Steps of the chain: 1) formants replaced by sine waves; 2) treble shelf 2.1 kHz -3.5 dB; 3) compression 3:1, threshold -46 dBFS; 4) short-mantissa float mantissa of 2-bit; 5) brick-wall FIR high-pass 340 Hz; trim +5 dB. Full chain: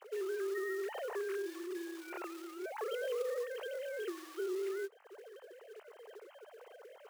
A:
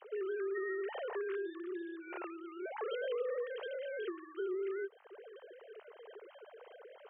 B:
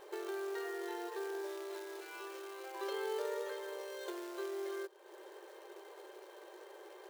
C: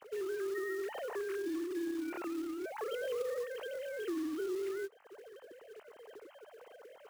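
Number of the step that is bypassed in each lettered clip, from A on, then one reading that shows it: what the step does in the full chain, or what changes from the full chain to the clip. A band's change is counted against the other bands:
4, distortion -20 dB; 1, 1 kHz band +4.5 dB; 5, 250 Hz band +6.5 dB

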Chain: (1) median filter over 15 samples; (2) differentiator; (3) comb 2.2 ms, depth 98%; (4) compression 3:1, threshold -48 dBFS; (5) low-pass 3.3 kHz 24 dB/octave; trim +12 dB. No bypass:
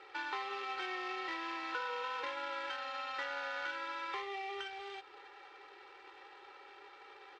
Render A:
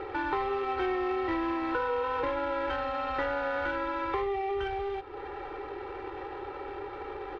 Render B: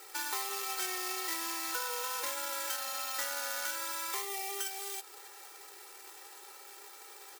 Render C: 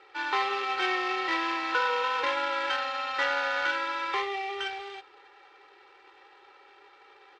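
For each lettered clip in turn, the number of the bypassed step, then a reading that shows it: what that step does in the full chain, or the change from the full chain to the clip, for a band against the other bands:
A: 2, 4 kHz band -13.5 dB; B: 5, 8 kHz band +27.5 dB; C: 4, mean gain reduction 7.0 dB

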